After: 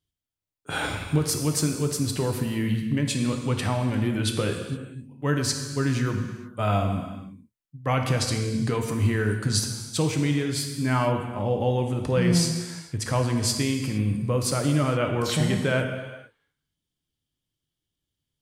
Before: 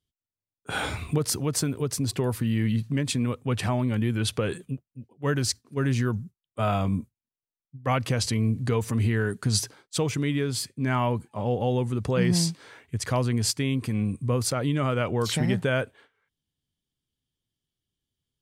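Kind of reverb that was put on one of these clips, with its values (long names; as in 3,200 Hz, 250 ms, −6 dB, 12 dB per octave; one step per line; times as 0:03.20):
reverb whose tail is shaped and stops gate 490 ms falling, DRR 3.5 dB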